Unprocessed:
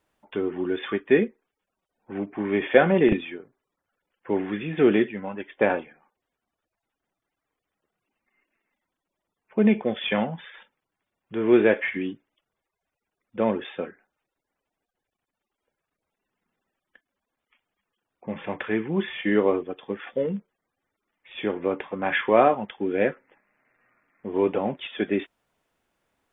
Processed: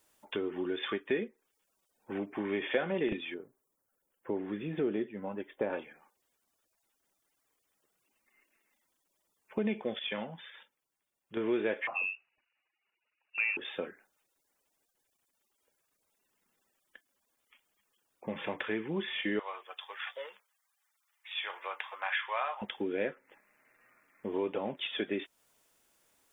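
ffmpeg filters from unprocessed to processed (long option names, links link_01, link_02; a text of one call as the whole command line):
ffmpeg -i in.wav -filter_complex "[0:a]asettb=1/sr,asplit=3[link_01][link_02][link_03];[link_01]atrim=end=3.344[link_04];[link_02]atrim=start=3.34:end=5.73,asetpts=PTS-STARTPTS,afade=type=in:duration=0.004:curve=qsin,afade=type=out:start_time=2.386:duration=0.004:curve=qsin,equalizer=frequency=3100:width=0.45:gain=-12[link_05];[link_03]atrim=start=5.726[link_06];[link_04][link_05]acrossfade=duration=0.004:curve1=hsin:curve2=qsin[link_07];[link_07][link_06]acrossfade=duration=0.004:curve1=qsin:curve2=hsin,asettb=1/sr,asplit=3[link_08][link_09][link_10];[link_08]atrim=end=11.874[link_11];[link_09]atrim=start=11.87:end=13.57,asetpts=PTS-STARTPTS,afade=type=in:duration=0.004:curve=qsin,afade=type=out:start_time=1.696:duration=0.004:curve=qsin,lowpass=frequency=2500:width_type=q:width=0.5098,lowpass=frequency=2500:width_type=q:width=0.6013,lowpass=frequency=2500:width_type=q:width=0.9,lowpass=frequency=2500:width_type=q:width=2.563,afreqshift=-2900[link_12];[link_10]atrim=start=13.566[link_13];[link_11][link_12]acrossfade=duration=0.004:curve1=hsin:curve2=qsin[link_14];[link_14][link_13]acrossfade=duration=0.004:curve1=qsin:curve2=hsin,asettb=1/sr,asplit=3[link_15][link_16][link_17];[link_15]atrim=end=19.394[link_18];[link_16]atrim=start=19.39:end=22.62,asetpts=PTS-STARTPTS,afade=type=in:duration=0.004:curve=qsin,afade=type=out:start_time=3.226:duration=0.004:curve=qsin,highpass=frequency=850:width=0.5412,highpass=frequency=850:width=1.3066[link_19];[link_17]atrim=start=22.616[link_20];[link_18][link_19]acrossfade=duration=0.004:curve1=hsin:curve2=qsin[link_21];[link_21][link_20]acrossfade=duration=0.004:curve1=qsin:curve2=hsin,asplit=3[link_22][link_23][link_24];[link_22]atrim=end=9.992[link_25];[link_23]atrim=start=9.988:end=11.372,asetpts=PTS-STARTPTS,volume=-8dB[link_26];[link_24]atrim=start=11.368[link_27];[link_25][link_26]acrossfade=duration=0.004:curve1=hsin:curve2=hsin[link_28];[link_28][link_27]acrossfade=duration=0.004:curve1=hsin:curve2=hsin,bass=frequency=250:gain=-5,treble=frequency=4000:gain=14,bandreject=frequency=730:width=19,acompressor=threshold=-34dB:ratio=2.5" out.wav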